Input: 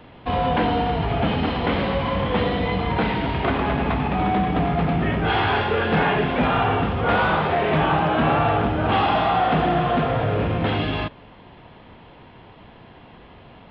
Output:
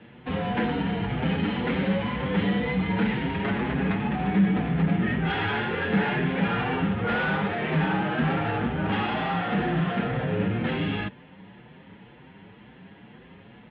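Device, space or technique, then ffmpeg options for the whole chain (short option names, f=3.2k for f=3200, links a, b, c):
barber-pole flanger into a guitar amplifier: -filter_complex "[0:a]asplit=2[a][b];[b]adelay=6.7,afreqshift=2[c];[a][c]amix=inputs=2:normalize=1,asoftclip=type=tanh:threshold=-18.5dB,highpass=82,equalizer=f=86:t=q:w=4:g=-4,equalizer=f=190:t=q:w=4:g=9,equalizer=f=670:t=q:w=4:g=-8,equalizer=f=1.1k:t=q:w=4:g=-7,equalizer=f=1.8k:t=q:w=4:g=4,lowpass=f=3.5k:w=0.5412,lowpass=f=3.5k:w=1.3066"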